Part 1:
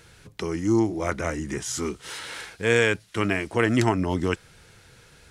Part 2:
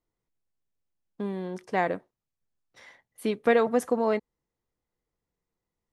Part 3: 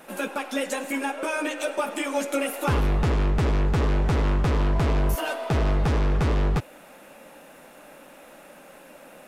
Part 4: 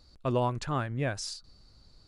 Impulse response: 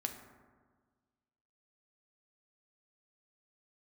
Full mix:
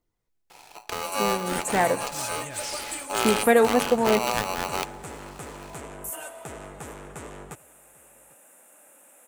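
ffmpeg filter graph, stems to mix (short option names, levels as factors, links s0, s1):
-filter_complex "[0:a]aeval=exprs='if(lt(val(0),0),0.251*val(0),val(0))':c=same,acompressor=threshold=0.00794:ratio=1.5,aeval=exprs='val(0)*sgn(sin(2*PI*850*n/s))':c=same,adelay=500,volume=1.33,asplit=2[s0][s1];[s1]volume=0.398[s2];[1:a]aphaser=in_gain=1:out_gain=1:delay=3:decay=0.35:speed=1.2:type=triangular,volume=1.12,asplit=2[s3][s4];[s4]volume=0.355[s5];[2:a]highpass=f=440:p=1,highshelf=f=6200:t=q:w=3:g=10,adelay=950,volume=0.335,asplit=2[s6][s7];[s7]volume=0.0708[s8];[3:a]crystalizer=i=5.5:c=0,adelay=1450,volume=0.237[s9];[4:a]atrim=start_sample=2205[s10];[s2][s5]amix=inputs=2:normalize=0[s11];[s11][s10]afir=irnorm=-1:irlink=0[s12];[s8]aecho=0:1:792:1[s13];[s0][s3][s6][s9][s12][s13]amix=inputs=6:normalize=0,bandreject=f=1100:w=28"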